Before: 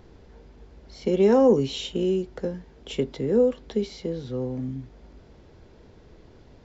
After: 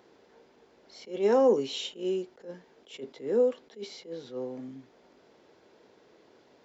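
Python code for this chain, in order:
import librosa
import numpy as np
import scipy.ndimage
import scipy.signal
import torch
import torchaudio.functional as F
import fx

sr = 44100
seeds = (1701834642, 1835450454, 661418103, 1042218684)

y = scipy.signal.sosfilt(scipy.signal.butter(2, 350.0, 'highpass', fs=sr, output='sos'), x)
y = fx.attack_slew(y, sr, db_per_s=190.0)
y = F.gain(torch.from_numpy(y), -2.5).numpy()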